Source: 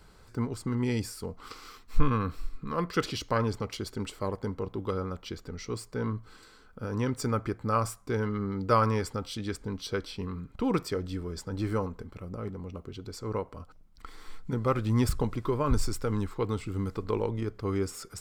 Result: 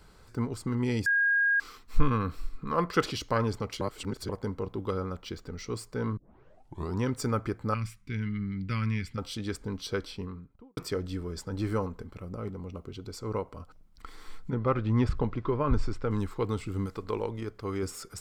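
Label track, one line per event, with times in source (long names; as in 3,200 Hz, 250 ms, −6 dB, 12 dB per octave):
1.060000	1.600000	beep over 1,630 Hz −21.5 dBFS
2.580000	3.120000	parametric band 850 Hz +5 dB 1.9 octaves
3.810000	4.290000	reverse
5.060000	5.620000	running median over 3 samples
6.170000	6.170000	tape start 0.85 s
7.740000	9.180000	drawn EQ curve 210 Hz 0 dB, 610 Hz −26 dB, 1,200 Hz −16 dB, 2,200 Hz +5 dB, 7,300 Hz −12 dB
10.010000	10.770000	fade out and dull
12.370000	13.590000	notch filter 1,700 Hz
14.500000	16.110000	low-pass filter 3,000 Hz
16.860000	17.830000	low-shelf EQ 390 Hz −5.5 dB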